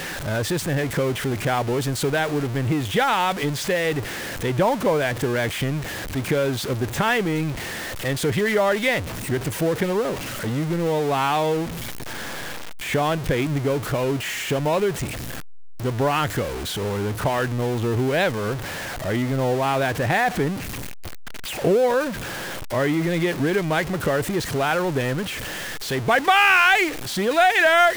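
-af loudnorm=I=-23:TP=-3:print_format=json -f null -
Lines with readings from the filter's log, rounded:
"input_i" : "-21.8",
"input_tp" : "-6.9",
"input_lra" : "6.3",
"input_thresh" : "-32.0",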